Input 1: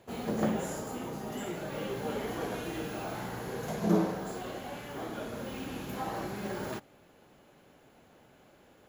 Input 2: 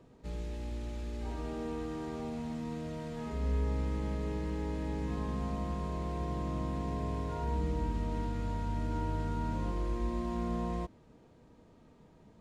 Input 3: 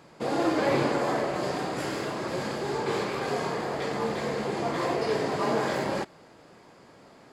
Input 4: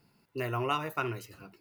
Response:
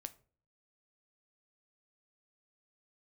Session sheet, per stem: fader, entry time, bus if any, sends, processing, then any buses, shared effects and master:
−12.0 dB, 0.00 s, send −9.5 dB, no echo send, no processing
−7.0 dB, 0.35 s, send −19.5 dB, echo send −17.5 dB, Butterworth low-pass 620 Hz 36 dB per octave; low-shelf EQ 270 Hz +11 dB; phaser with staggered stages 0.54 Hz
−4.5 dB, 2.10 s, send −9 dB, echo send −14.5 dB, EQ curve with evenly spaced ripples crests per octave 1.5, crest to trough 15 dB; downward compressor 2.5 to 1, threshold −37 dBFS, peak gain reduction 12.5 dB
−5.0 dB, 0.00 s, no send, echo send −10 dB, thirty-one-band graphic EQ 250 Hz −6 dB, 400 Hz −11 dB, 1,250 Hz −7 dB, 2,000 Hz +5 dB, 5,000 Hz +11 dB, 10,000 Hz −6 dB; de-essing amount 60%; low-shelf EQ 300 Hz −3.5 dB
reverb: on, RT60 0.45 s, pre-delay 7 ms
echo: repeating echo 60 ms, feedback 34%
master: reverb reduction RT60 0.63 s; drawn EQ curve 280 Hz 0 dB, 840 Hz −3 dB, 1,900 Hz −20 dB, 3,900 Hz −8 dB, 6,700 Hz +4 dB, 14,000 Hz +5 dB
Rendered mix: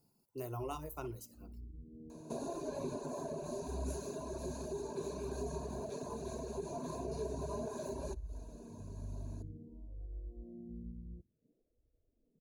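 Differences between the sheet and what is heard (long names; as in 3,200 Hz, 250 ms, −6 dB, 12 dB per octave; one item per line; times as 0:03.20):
stem 1: muted
stem 2 −7.0 dB → −17.0 dB
stem 4: missing thirty-one-band graphic EQ 250 Hz −6 dB, 400 Hz −11 dB, 1,250 Hz −7 dB, 2,000 Hz +5 dB, 5,000 Hz +11 dB, 10,000 Hz −6 dB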